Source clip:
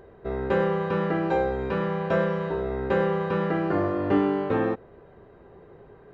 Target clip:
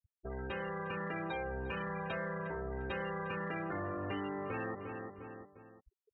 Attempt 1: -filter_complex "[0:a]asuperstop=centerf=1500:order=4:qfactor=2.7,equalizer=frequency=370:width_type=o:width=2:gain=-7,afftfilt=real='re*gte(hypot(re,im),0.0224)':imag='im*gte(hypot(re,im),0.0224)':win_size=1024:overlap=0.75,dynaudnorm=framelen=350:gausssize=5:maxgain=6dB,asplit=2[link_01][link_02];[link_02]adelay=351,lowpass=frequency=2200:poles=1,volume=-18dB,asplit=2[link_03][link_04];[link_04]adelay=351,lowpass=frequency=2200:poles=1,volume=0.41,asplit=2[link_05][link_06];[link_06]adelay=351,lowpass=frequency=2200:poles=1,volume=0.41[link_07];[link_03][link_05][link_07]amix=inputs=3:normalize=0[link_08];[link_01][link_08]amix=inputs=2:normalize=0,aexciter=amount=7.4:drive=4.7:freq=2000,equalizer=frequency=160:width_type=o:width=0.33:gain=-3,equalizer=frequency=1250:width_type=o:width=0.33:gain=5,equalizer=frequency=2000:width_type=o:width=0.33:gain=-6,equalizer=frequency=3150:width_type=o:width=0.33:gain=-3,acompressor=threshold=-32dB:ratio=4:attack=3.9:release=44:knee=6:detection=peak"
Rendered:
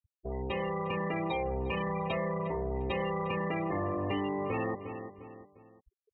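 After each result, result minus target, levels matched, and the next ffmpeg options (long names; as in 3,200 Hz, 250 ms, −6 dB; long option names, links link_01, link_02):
downward compressor: peak gain reduction −7 dB; 2,000 Hz band −5.0 dB
-filter_complex "[0:a]asuperstop=centerf=1500:order=4:qfactor=2.7,equalizer=frequency=370:width_type=o:width=2:gain=-7,afftfilt=real='re*gte(hypot(re,im),0.0224)':imag='im*gte(hypot(re,im),0.0224)':win_size=1024:overlap=0.75,dynaudnorm=framelen=350:gausssize=5:maxgain=6dB,asplit=2[link_01][link_02];[link_02]adelay=351,lowpass=frequency=2200:poles=1,volume=-18dB,asplit=2[link_03][link_04];[link_04]adelay=351,lowpass=frequency=2200:poles=1,volume=0.41,asplit=2[link_05][link_06];[link_06]adelay=351,lowpass=frequency=2200:poles=1,volume=0.41[link_07];[link_03][link_05][link_07]amix=inputs=3:normalize=0[link_08];[link_01][link_08]amix=inputs=2:normalize=0,aexciter=amount=7.4:drive=4.7:freq=2000,equalizer=frequency=160:width_type=o:width=0.33:gain=-3,equalizer=frequency=1250:width_type=o:width=0.33:gain=5,equalizer=frequency=2000:width_type=o:width=0.33:gain=-6,equalizer=frequency=3150:width_type=o:width=0.33:gain=-3,acompressor=threshold=-40.5dB:ratio=4:attack=3.9:release=44:knee=6:detection=peak"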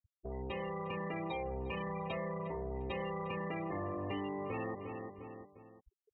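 2,000 Hz band −4.5 dB
-filter_complex "[0:a]equalizer=frequency=370:width_type=o:width=2:gain=-7,afftfilt=real='re*gte(hypot(re,im),0.0224)':imag='im*gte(hypot(re,im),0.0224)':win_size=1024:overlap=0.75,dynaudnorm=framelen=350:gausssize=5:maxgain=6dB,asplit=2[link_01][link_02];[link_02]adelay=351,lowpass=frequency=2200:poles=1,volume=-18dB,asplit=2[link_03][link_04];[link_04]adelay=351,lowpass=frequency=2200:poles=1,volume=0.41,asplit=2[link_05][link_06];[link_06]adelay=351,lowpass=frequency=2200:poles=1,volume=0.41[link_07];[link_03][link_05][link_07]amix=inputs=3:normalize=0[link_08];[link_01][link_08]amix=inputs=2:normalize=0,aexciter=amount=7.4:drive=4.7:freq=2000,equalizer=frequency=160:width_type=o:width=0.33:gain=-3,equalizer=frequency=1250:width_type=o:width=0.33:gain=5,equalizer=frequency=2000:width_type=o:width=0.33:gain=-6,equalizer=frequency=3150:width_type=o:width=0.33:gain=-3,acompressor=threshold=-40.5dB:ratio=4:attack=3.9:release=44:knee=6:detection=peak"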